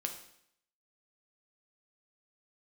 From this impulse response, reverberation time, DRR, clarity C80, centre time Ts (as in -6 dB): 0.70 s, 3.5 dB, 11.5 dB, 17 ms